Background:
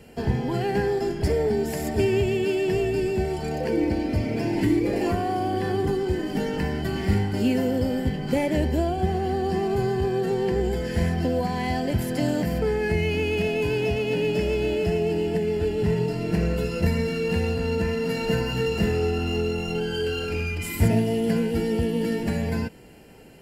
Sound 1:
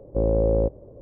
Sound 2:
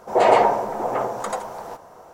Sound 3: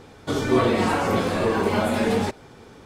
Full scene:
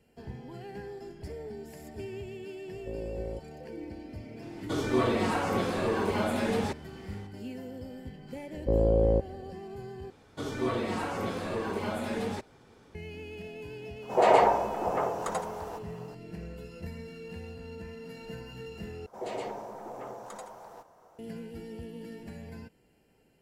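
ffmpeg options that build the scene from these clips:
-filter_complex "[1:a]asplit=2[a][b];[3:a]asplit=2[c][d];[2:a]asplit=2[e][f];[0:a]volume=-18dB[g];[f]acrossover=split=440|2600[h][i][j];[i]acompressor=threshold=-26dB:ratio=6:attack=0.25:release=55:knee=2.83:detection=peak[k];[h][k][j]amix=inputs=3:normalize=0[l];[g]asplit=3[m][n][o];[m]atrim=end=10.104[p];[d]atrim=end=2.85,asetpts=PTS-STARTPTS,volume=-11dB[q];[n]atrim=start=12.946:end=19.064[r];[l]atrim=end=2.13,asetpts=PTS-STARTPTS,volume=-13.5dB[s];[o]atrim=start=21.186[t];[a]atrim=end=1.01,asetpts=PTS-STARTPTS,volume=-16.5dB,afade=t=in:d=0.004:c=hsin,afade=t=out:st=1.006:d=0.004:c=hsin,adelay=2710[u];[c]atrim=end=2.85,asetpts=PTS-STARTPTS,volume=-7dB,afade=t=in:d=0.004:c=hsin,afade=t=out:st=2.846:d=0.004:c=hsin,adelay=4420[v];[b]atrim=end=1.01,asetpts=PTS-STARTPTS,volume=-3dB,afade=t=in:d=0.004:c=hsin,afade=t=out:st=1.006:d=0.004:c=hsin,adelay=8520[w];[e]atrim=end=2.13,asetpts=PTS-STARTPTS,volume=-5.5dB,afade=t=in:d=0.004:c=hsin,afade=t=out:st=2.126:d=0.004:c=hsin,adelay=14020[x];[p][q]acrossfade=d=0.004:c1=hsin:c2=hsin[y];[y][r]acrossfade=d=0.004:c1=hsin:c2=hsin[z];[z][s]acrossfade=d=0.004:c1=hsin:c2=hsin[aa];[aa][t]acrossfade=d=0.004:c1=hsin:c2=hsin[ab];[ab][u][v][w][x]amix=inputs=5:normalize=0"

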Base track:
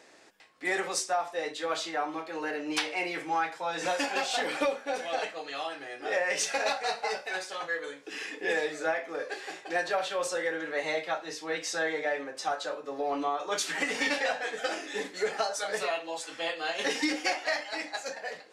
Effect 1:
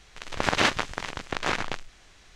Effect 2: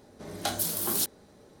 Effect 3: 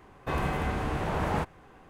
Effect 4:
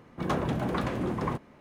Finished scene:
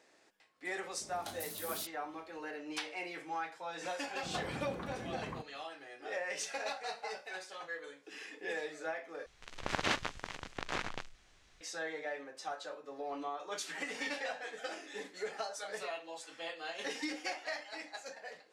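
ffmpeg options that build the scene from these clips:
-filter_complex "[0:a]volume=-10dB[a];[2:a]alimiter=limit=-17.5dB:level=0:latency=1:release=101[b];[a]asplit=2[c][d];[c]atrim=end=9.264[e];[1:a]atrim=end=2.35,asetpts=PTS-STARTPTS,volume=-10.5dB[f];[d]atrim=start=11.606[g];[b]atrim=end=1.6,asetpts=PTS-STARTPTS,volume=-13.5dB,afade=t=in:d=0.004:c=hsin,afade=t=out:st=1.596:d=0.004:c=hsin,adelay=810[h];[4:a]atrim=end=1.6,asetpts=PTS-STARTPTS,volume=-14dB,afade=t=in:d=0.004:c=hsin,afade=t=out:st=1.596:d=0.004:c=hsin,adelay=178605S[i];[e][f]acrossfade=d=0.004:c1=hsin:c2=hsin[j];[j][g]acrossfade=d=0.004:c1=hsin:c2=hsin[k];[k][h][i]amix=inputs=3:normalize=0"

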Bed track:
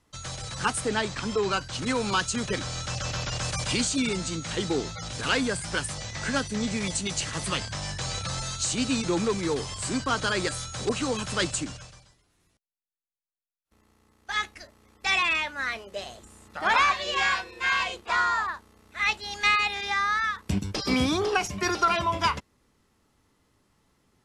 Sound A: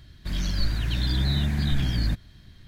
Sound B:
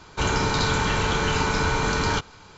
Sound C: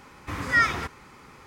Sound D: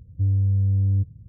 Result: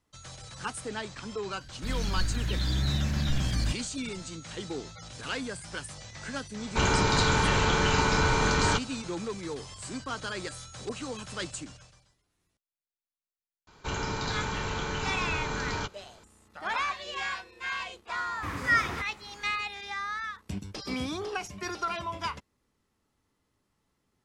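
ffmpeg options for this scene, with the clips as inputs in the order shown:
-filter_complex "[2:a]asplit=2[a][b];[0:a]volume=-9dB[c];[1:a]atrim=end=2.67,asetpts=PTS-STARTPTS,volume=-4dB,afade=t=in:d=0.004:c=hsin,afade=t=out:st=2.666:d=0.004:c=hsin,adelay=1580[d];[a]atrim=end=2.57,asetpts=PTS-STARTPTS,volume=-1.5dB,afade=t=in:d=0.004:c=hsin,afade=t=out:st=2.566:d=0.004:c=hsin,adelay=290178S[e];[b]atrim=end=2.57,asetpts=PTS-STARTPTS,volume=-9.5dB,afade=t=in:d=0.004:c=hsin,afade=t=out:st=2.566:d=0.004:c=hsin,adelay=13670[f];[3:a]atrim=end=1.46,asetpts=PTS-STARTPTS,volume=-3.5dB,afade=t=in:d=0.004:c=hsin,afade=t=out:st=1.456:d=0.004:c=hsin,adelay=18150[g];[c][d][e][f][g]amix=inputs=5:normalize=0"

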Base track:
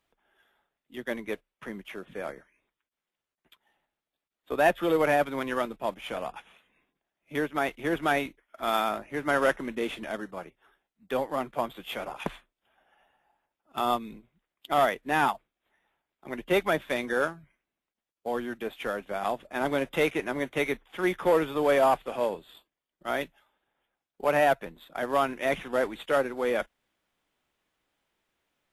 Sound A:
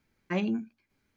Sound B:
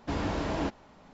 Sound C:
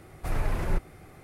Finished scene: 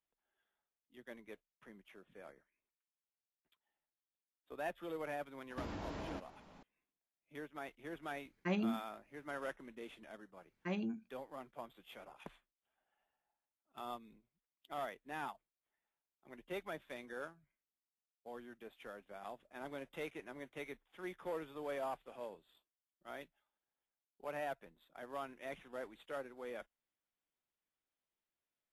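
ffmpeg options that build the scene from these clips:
-filter_complex "[1:a]asplit=2[a][b];[0:a]volume=-19dB[c];[2:a]acompressor=threshold=-40dB:ratio=4:attack=21:release=116:knee=1:detection=peak,atrim=end=1.13,asetpts=PTS-STARTPTS,volume=-5dB,afade=t=in:d=0.004:c=hsin,afade=t=out:st=1.126:d=0.004:c=hsin,adelay=5500[d];[a]atrim=end=1.16,asetpts=PTS-STARTPTS,volume=-6.5dB,afade=t=in:d=0.004:c=hsin,afade=t=out:st=1.156:d=0.004:c=hsin,adelay=8150[e];[b]atrim=end=1.16,asetpts=PTS-STARTPTS,volume=-10dB,afade=t=in:d=0.004:c=hsin,afade=t=out:st=1.156:d=0.004:c=hsin,adelay=10350[f];[c][d][e][f]amix=inputs=4:normalize=0"

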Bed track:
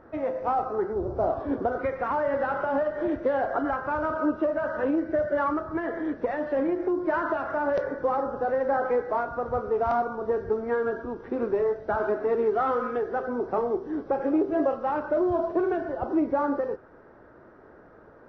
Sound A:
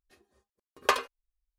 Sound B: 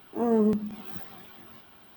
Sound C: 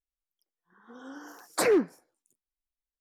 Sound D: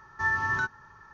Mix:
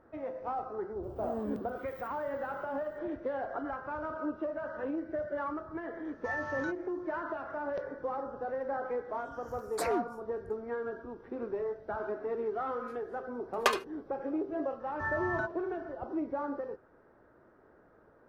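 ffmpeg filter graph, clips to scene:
-filter_complex "[4:a]asplit=2[a][b];[0:a]volume=-10dB[c];[2:a]aeval=exprs='sgn(val(0))*max(abs(val(0))-0.00188,0)':c=same[d];[a]aresample=16000,aresample=44100[e];[b]lowpass=f=1k:p=1[f];[d]atrim=end=1.96,asetpts=PTS-STARTPTS,volume=-14.5dB,afade=t=in:d=0.004:c=hsin,afade=t=out:st=1.956:d=0.004:c=hsin,adelay=1030[g];[e]atrim=end=1.13,asetpts=PTS-STARTPTS,volume=-10.5dB,afade=t=in:d=0.004:c=hsin,afade=t=out:st=1.126:d=0.004:c=hsin,adelay=6050[h];[3:a]atrim=end=3,asetpts=PTS-STARTPTS,volume=-10dB,afade=t=in:d=0.004:c=hsin,afade=t=out:st=2.996:d=0.004:c=hsin,adelay=8200[i];[1:a]atrim=end=1.58,asetpts=PTS-STARTPTS,volume=-2.5dB,afade=t=in:d=0.004:c=hsin,afade=t=out:st=1.576:d=0.004:c=hsin,adelay=12770[j];[f]atrim=end=1.13,asetpts=PTS-STARTPTS,volume=-3dB,afade=t=in:d=0.004:c=hsin,afade=t=out:st=1.126:d=0.004:c=hsin,adelay=14800[k];[c][g][h][i][j][k]amix=inputs=6:normalize=0"

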